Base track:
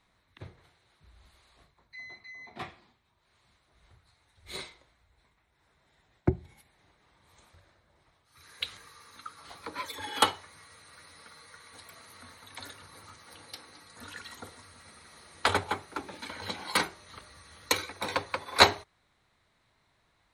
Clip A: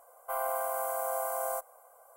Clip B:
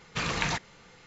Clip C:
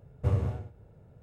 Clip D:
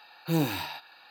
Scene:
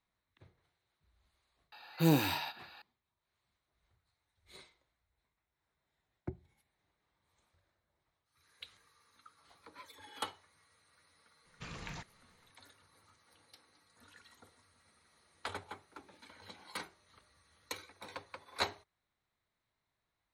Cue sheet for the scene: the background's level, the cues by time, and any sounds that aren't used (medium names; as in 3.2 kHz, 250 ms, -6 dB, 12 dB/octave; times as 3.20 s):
base track -16 dB
1.72 s: add D -1 dB
11.45 s: add B -18 dB + bass shelf 190 Hz +7.5 dB
not used: A, C